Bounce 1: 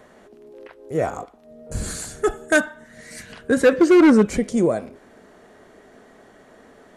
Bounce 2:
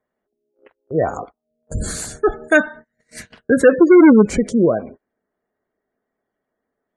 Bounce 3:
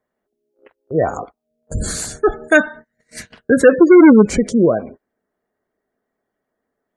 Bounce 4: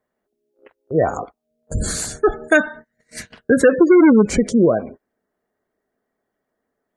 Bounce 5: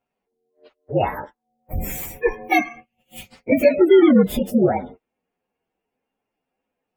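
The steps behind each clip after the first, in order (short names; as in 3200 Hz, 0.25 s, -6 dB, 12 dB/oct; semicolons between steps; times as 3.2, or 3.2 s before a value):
spectral gate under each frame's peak -25 dB strong; gate -38 dBFS, range -33 dB; gain +4 dB
dynamic EQ 5100 Hz, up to +3 dB, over -42 dBFS, Q 1.1; gain +1.5 dB
compressor, threshold -8 dBFS, peak gain reduction 4 dB
inharmonic rescaling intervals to 119%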